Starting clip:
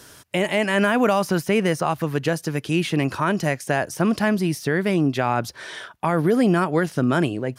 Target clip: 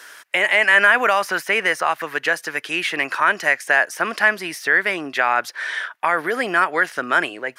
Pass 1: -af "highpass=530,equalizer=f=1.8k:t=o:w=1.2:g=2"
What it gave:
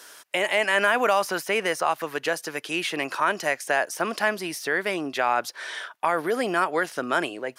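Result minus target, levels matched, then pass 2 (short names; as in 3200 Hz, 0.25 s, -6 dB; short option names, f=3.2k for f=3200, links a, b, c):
2000 Hz band -3.0 dB
-af "highpass=530,equalizer=f=1.8k:t=o:w=1.2:g=12.5"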